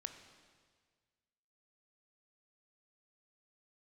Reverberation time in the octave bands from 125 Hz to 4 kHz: 2.0, 1.7, 1.7, 1.6, 1.6, 1.6 seconds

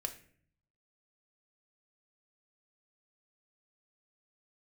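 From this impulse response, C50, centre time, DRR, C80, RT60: 12.5 dB, 10 ms, 5.5 dB, 16.0 dB, 0.55 s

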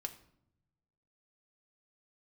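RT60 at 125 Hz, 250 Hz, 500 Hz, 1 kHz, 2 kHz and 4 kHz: 1.5, 1.3, 0.80, 0.65, 0.55, 0.50 seconds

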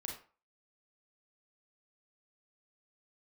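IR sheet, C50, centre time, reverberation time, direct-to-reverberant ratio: 5.5 dB, 29 ms, 0.40 s, 0.0 dB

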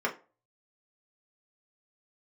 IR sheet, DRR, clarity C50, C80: −3.0 dB, 14.0 dB, 20.0 dB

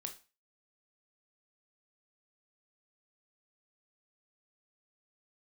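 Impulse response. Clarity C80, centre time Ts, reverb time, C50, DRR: 18.5 dB, 11 ms, 0.30 s, 12.5 dB, 4.5 dB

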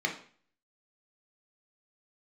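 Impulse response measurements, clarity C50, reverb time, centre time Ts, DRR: 9.0 dB, 0.45 s, 17 ms, 0.5 dB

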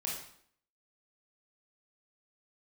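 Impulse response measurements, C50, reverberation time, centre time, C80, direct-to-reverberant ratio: 2.5 dB, 0.60 s, 45 ms, 7.0 dB, −3.5 dB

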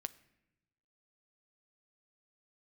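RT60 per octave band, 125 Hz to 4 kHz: 1.4, 1.2, 1.0, 0.80, 0.95, 0.65 seconds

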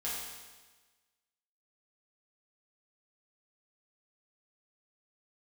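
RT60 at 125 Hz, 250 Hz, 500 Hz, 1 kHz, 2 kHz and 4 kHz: 1.3, 1.3, 1.3, 1.3, 1.3, 1.3 seconds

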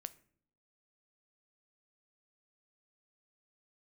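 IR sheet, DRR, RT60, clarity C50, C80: 13.5 dB, 0.60 s, 19.0 dB, 23.0 dB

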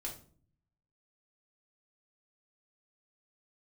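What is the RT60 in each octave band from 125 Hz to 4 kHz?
1.1, 0.80, 0.55, 0.40, 0.35, 0.30 seconds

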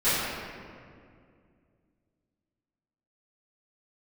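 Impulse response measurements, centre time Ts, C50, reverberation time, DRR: 140 ms, −3.0 dB, 2.2 s, −17.5 dB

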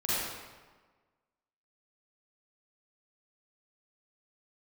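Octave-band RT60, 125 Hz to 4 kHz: 1.3, 1.4, 1.4, 1.4, 1.2, 0.95 seconds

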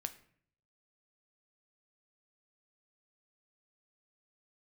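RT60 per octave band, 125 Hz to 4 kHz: 0.95, 0.70, 0.60, 0.55, 0.55, 0.40 seconds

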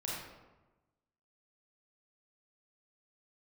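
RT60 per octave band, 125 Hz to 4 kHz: 1.3, 1.3, 1.2, 1.1, 0.85, 0.65 seconds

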